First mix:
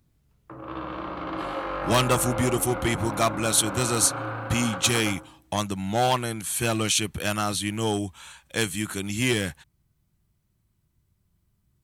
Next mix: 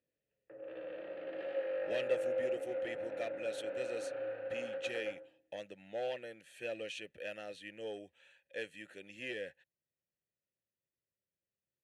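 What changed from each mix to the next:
speech −4.5 dB
master: add formant filter e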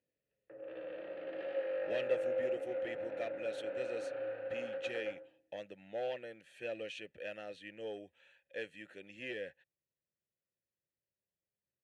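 speech: add high-shelf EQ 6,400 Hz −12 dB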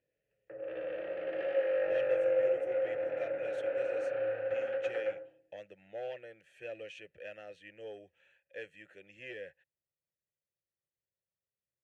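background +8.5 dB
master: add graphic EQ with 15 bands 250 Hz −12 dB, 1,000 Hz −6 dB, 4,000 Hz −9 dB, 10,000 Hz −7 dB

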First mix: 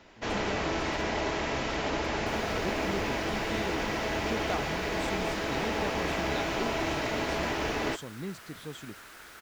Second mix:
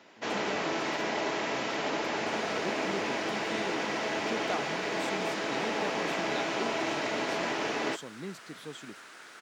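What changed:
second sound: add Savitzky-Golay smoothing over 9 samples
master: add Bessel high-pass filter 210 Hz, order 4

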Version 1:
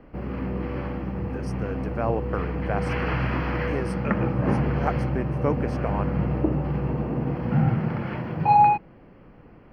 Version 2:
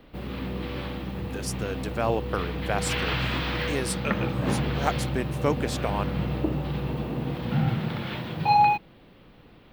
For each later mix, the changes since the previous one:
background −3.5 dB
master: remove moving average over 12 samples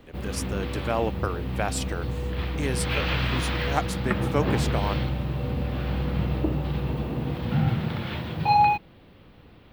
speech: entry −1.10 s
background: add parametric band 80 Hz +13 dB 0.45 octaves

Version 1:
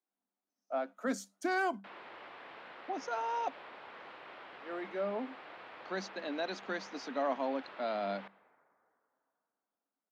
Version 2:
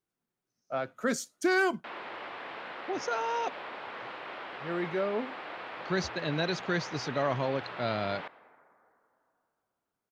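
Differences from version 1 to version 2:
speech: remove Chebyshev high-pass with heavy ripple 190 Hz, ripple 9 dB
background +9.0 dB

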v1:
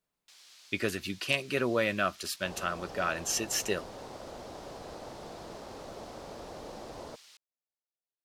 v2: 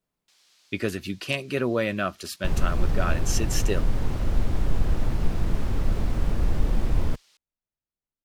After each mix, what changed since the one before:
first sound −5.5 dB
second sound: remove resonant band-pass 630 Hz, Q 1.4
master: add low-shelf EQ 450 Hz +7.5 dB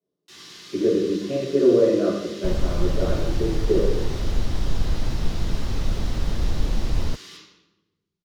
speech: add resonant band-pass 540 Hz, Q 3.5
first sound +10.0 dB
reverb: on, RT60 1.1 s

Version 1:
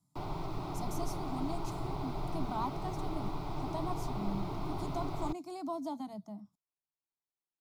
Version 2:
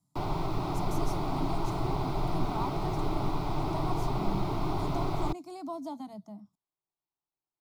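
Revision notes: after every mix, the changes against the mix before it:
background +7.0 dB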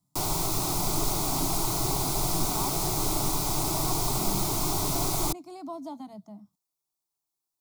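background: remove high-frequency loss of the air 390 metres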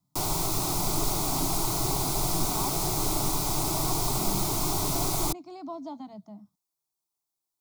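speech: add low-pass filter 6,100 Hz 24 dB per octave

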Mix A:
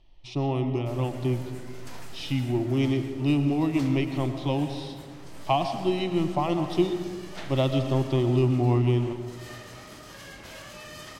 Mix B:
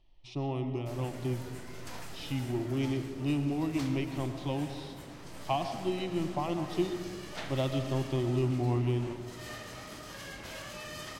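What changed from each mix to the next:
speech −7.0 dB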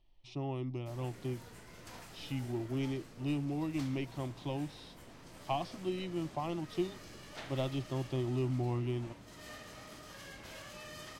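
background −4.5 dB
reverb: off

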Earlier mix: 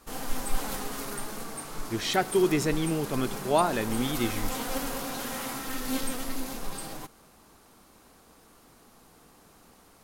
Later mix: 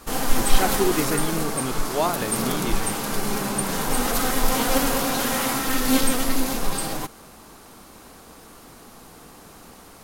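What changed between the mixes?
speech: entry −1.55 s
background +11.0 dB

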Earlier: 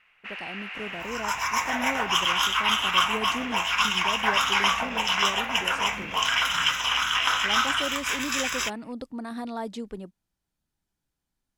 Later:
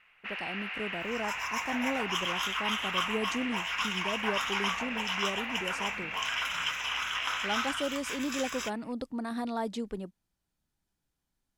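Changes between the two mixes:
first sound: add parametric band 8,600 Hz −11 dB 0.85 octaves
second sound −9.5 dB

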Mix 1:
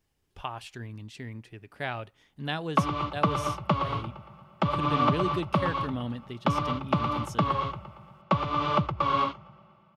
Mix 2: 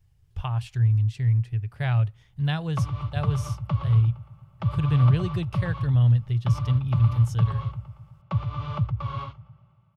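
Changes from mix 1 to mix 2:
background −10.5 dB
master: add low shelf with overshoot 170 Hz +14 dB, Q 3

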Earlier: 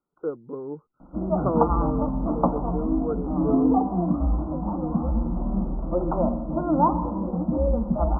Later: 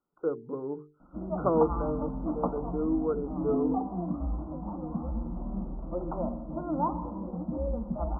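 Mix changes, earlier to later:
speech: add mains-hum notches 50/100/150/200/250/300/350/400/450 Hz
background −9.0 dB

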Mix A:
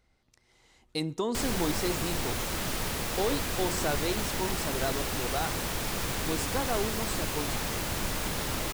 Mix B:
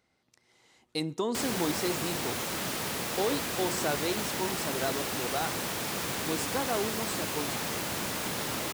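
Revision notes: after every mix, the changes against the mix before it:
master: add high-pass filter 140 Hz 12 dB per octave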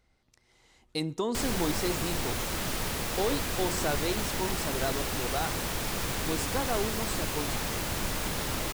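master: remove high-pass filter 140 Hz 12 dB per octave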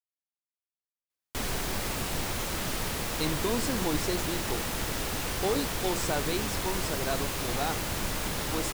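speech: entry +2.25 s

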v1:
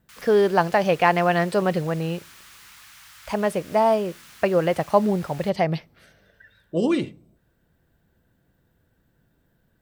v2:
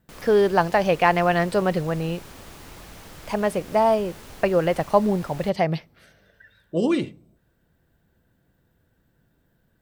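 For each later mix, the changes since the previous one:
background: remove high-pass filter 1,200 Hz 24 dB per octave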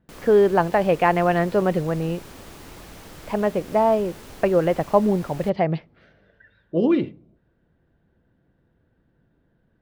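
speech: add high-frequency loss of the air 270 metres
master: add parametric band 330 Hz +3.5 dB 1.5 octaves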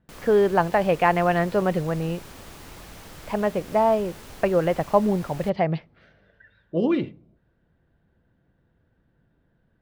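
master: add parametric band 330 Hz −3.5 dB 1.5 octaves

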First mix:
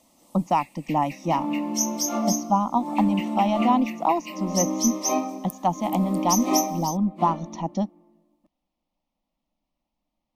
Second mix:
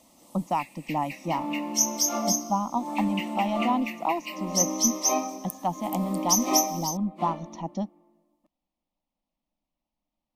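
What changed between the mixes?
speech −5.0 dB
first sound: send +10.5 dB
second sound: add low-shelf EQ 260 Hz −10.5 dB

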